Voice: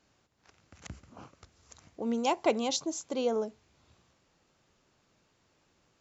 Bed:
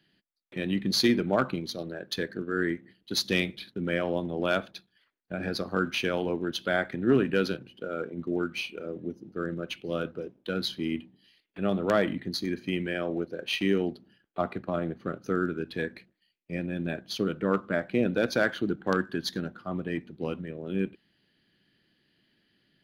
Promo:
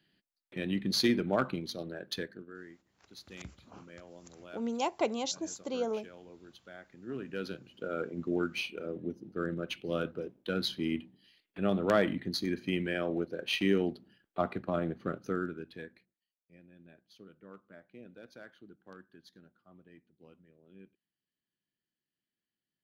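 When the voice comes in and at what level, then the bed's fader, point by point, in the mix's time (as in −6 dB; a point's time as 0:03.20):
2.55 s, −3.5 dB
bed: 0:02.14 −4 dB
0:02.68 −23 dB
0:06.87 −23 dB
0:07.86 −2 dB
0:15.14 −2 dB
0:16.52 −25.5 dB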